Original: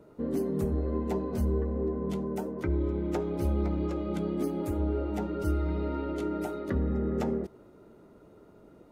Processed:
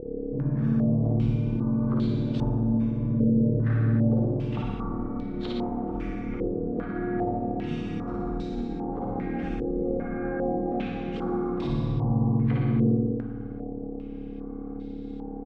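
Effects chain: bell 120 Hz -7.5 dB 1.8 oct; limiter -29.5 dBFS, peak gain reduction 9.5 dB; buzz 60 Hz, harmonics 14, -45 dBFS -1 dB/oct; doubler 31 ms -4 dB; flutter echo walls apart 6.1 m, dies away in 0.49 s; Schroeder reverb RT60 1 s, combs from 27 ms, DRR 0.5 dB; speed mistake 78 rpm record played at 45 rpm; stepped low-pass 2.5 Hz 500–3800 Hz; gain +3 dB

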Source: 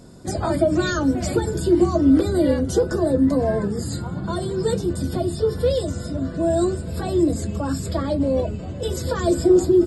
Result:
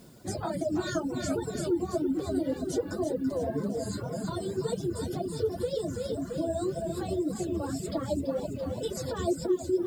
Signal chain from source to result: low shelf 70 Hz -7.5 dB; split-band echo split 330 Hz, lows 0.227 s, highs 0.334 s, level -6 dB; dynamic EQ 1700 Hz, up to -4 dB, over -34 dBFS, Q 0.78; compressor 3:1, threshold -20 dBFS, peak gain reduction 7.5 dB; flange 1.9 Hz, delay 4.3 ms, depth 6.6 ms, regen +18%; requantised 10-bit, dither triangular; reverb removal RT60 0.73 s; gain -2.5 dB

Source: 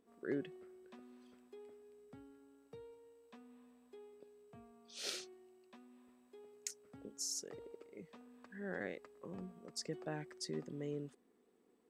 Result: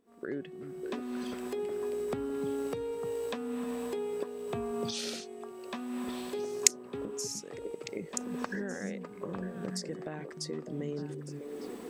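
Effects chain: recorder AGC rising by 39 dB/s; delay with a stepping band-pass 0.301 s, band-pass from 160 Hz, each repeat 1.4 oct, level -0.5 dB; gain +1 dB

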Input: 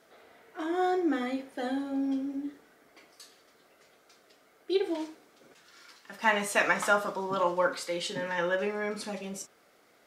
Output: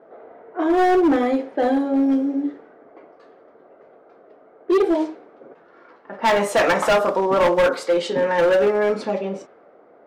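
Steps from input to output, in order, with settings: low-pass opened by the level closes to 1200 Hz, open at -27 dBFS; bell 520 Hz +14.5 dB 2.8 oct; overloaded stage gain 15 dB; gain +2 dB

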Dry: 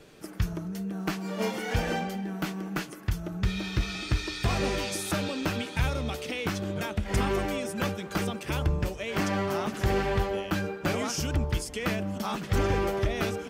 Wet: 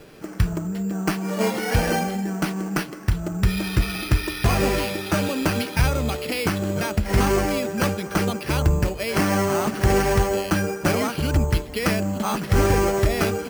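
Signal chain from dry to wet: careless resampling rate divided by 6×, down filtered, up hold; gain +7.5 dB

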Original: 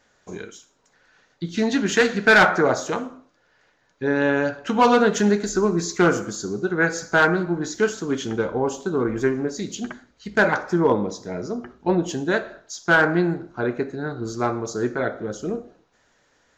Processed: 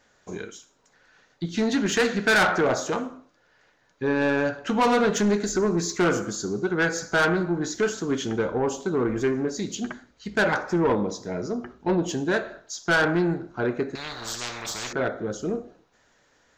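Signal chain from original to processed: soft clip -16 dBFS, distortion -12 dB; 13.95–14.93 spectral compressor 10:1

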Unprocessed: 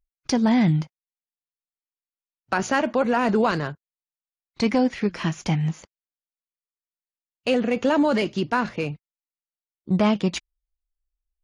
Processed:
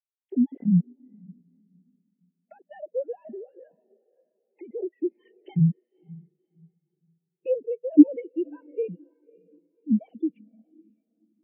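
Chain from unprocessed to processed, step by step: sine-wave speech; recorder AGC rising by 39 dB/s; bell 1200 Hz -14.5 dB 0.91 oct; 3.23–4.74 compressor 6:1, threshold -20 dBFS, peak gain reduction 6 dB; 8.8–9.91 transient shaper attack -8 dB, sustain +8 dB; diffused feedback echo 0.567 s, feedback 60%, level -9 dB; spectral expander 2.5:1; gain +2.5 dB

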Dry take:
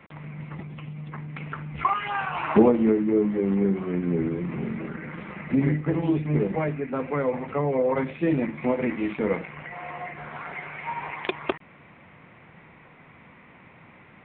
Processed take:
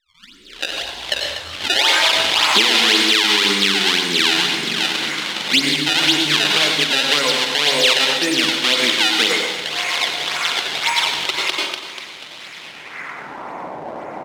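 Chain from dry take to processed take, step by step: tape start at the beginning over 2.58 s; bell 300 Hz +6 dB 0.86 oct; in parallel at +3 dB: compressor, threshold -28 dBFS, peak gain reduction 18.5 dB; on the sum: decimation with a swept rate 23×, swing 160% 1.9 Hz; band-pass sweep 3400 Hz -> 740 Hz, 12.57–13.58; on a send: feedback echo 0.243 s, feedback 48%, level -13.5 dB; on the sum: plate-style reverb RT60 0.77 s, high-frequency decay 0.75×, pre-delay 80 ms, DRR 4 dB; maximiser +20.5 dB; gain -1 dB

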